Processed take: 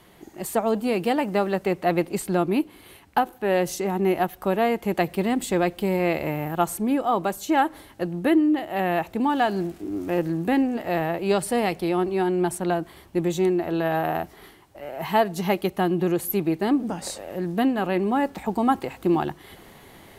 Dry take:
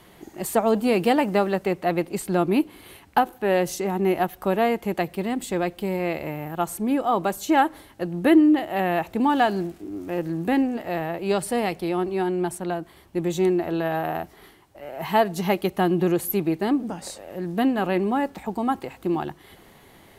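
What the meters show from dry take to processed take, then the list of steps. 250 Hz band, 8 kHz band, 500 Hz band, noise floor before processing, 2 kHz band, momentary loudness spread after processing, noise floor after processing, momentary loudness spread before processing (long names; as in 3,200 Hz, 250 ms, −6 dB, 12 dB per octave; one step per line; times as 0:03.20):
−0.5 dB, +0.5 dB, 0.0 dB, −52 dBFS, 0.0 dB, 6 LU, −51 dBFS, 11 LU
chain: speech leveller within 4 dB 0.5 s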